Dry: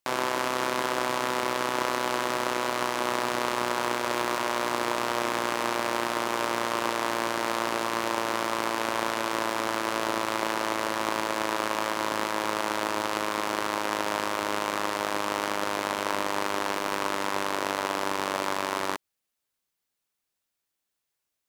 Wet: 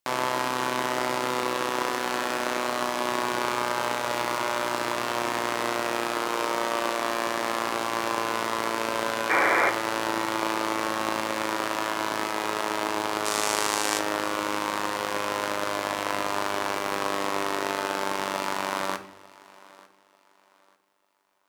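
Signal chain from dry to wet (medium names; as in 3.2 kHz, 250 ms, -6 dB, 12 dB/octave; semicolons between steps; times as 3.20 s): 9.29–9.70 s: painted sound noise 300–2400 Hz -23 dBFS; 13.25–13.99 s: peaking EQ 7.9 kHz +13 dB 1.9 oct; on a send: thinning echo 895 ms, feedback 29%, high-pass 150 Hz, level -22 dB; on the sum: simulated room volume 130 m³, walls mixed, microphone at 0.32 m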